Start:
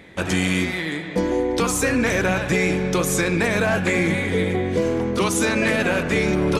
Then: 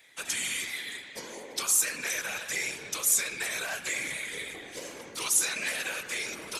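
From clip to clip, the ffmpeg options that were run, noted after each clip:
-af "aderivative,afftfilt=real='hypot(re,im)*cos(2*PI*random(0))':imag='hypot(re,im)*sin(2*PI*random(1))':win_size=512:overlap=0.75,acontrast=88"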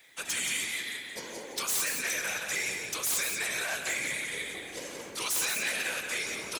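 -af "aeval=exprs='0.0631*(abs(mod(val(0)/0.0631+3,4)-2)-1)':c=same,acrusher=bits=10:mix=0:aa=0.000001,aecho=1:1:176:0.501"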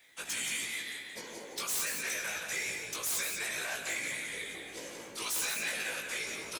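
-filter_complex "[0:a]asplit=2[a][b];[b]adelay=18,volume=-4.5dB[c];[a][c]amix=inputs=2:normalize=0,volume=-5dB"

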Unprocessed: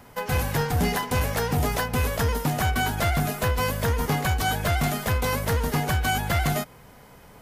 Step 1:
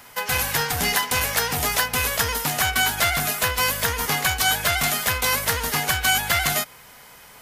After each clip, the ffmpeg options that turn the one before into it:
-af "tiltshelf=f=840:g=-9,volume=1.5dB"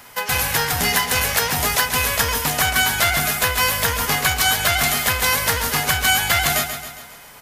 -af "aecho=1:1:136|272|408|544|680|816:0.355|0.188|0.0997|0.0528|0.028|0.0148,volume=2.5dB"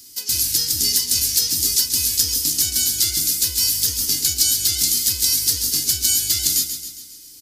-af "firequalizer=gain_entry='entry(100,0);entry(180,-7);entry(310,9);entry(580,-27);entry(4700,15);entry(12000,10)':delay=0.05:min_phase=1,volume=-7.5dB"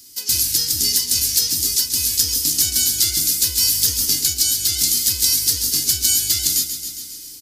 -af "dynaudnorm=f=150:g=3:m=7.5dB,volume=-1dB"

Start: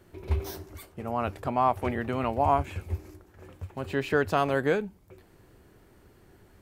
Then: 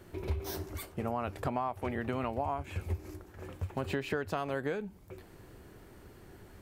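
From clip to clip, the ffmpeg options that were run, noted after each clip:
-af "acompressor=threshold=-33dB:ratio=16,volume=3.5dB"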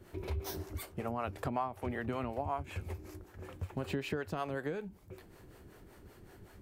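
-filter_complex "[0:a]acrossover=split=400[a][b];[a]aeval=exprs='val(0)*(1-0.7/2+0.7/2*cos(2*PI*5.3*n/s))':c=same[c];[b]aeval=exprs='val(0)*(1-0.7/2-0.7/2*cos(2*PI*5.3*n/s))':c=same[d];[c][d]amix=inputs=2:normalize=0,volume=1dB"

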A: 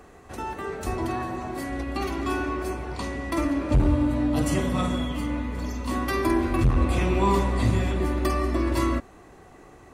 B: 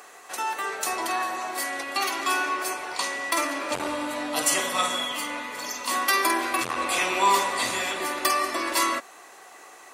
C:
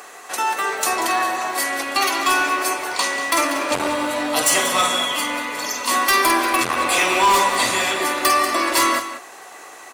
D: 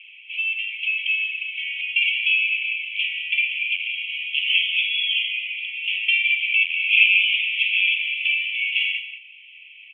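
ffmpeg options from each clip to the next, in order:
-af "highpass=750,highshelf=f=3.4k:g=8.5,volume=6dB"
-filter_complex "[0:a]asplit=2[a][b];[b]acrusher=bits=4:mode=log:mix=0:aa=0.000001,volume=-10dB[c];[a][c]amix=inputs=2:normalize=0,asoftclip=type=hard:threshold=-16.5dB,aecho=1:1:188:0.251,volume=5dB"
-af "asuperpass=centerf=2700:order=12:qfactor=2.7,volume=8dB"

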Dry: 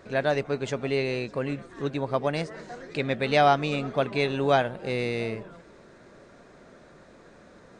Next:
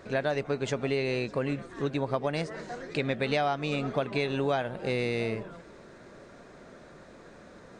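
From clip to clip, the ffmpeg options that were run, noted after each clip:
-af "acompressor=threshold=-26dB:ratio=6,volume=1.5dB"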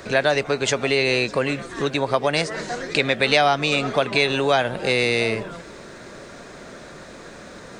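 -filter_complex "[0:a]highshelf=f=2.1k:g=8.5,acrossover=split=370|1400[a][b][c];[a]alimiter=level_in=8dB:limit=-24dB:level=0:latency=1:release=190,volume=-8dB[d];[d][b][c]amix=inputs=3:normalize=0,volume=9dB"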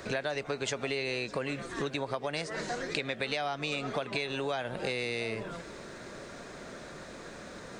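-af "acompressor=threshold=-25dB:ratio=6,volume=-5dB"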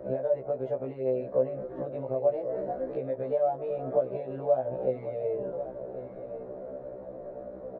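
-filter_complex "[0:a]lowpass=f=580:t=q:w=4.9,asplit=2[a][b];[b]aecho=0:1:1094:0.266[c];[a][c]amix=inputs=2:normalize=0,afftfilt=real='re*1.73*eq(mod(b,3),0)':imag='im*1.73*eq(mod(b,3),0)':win_size=2048:overlap=0.75"

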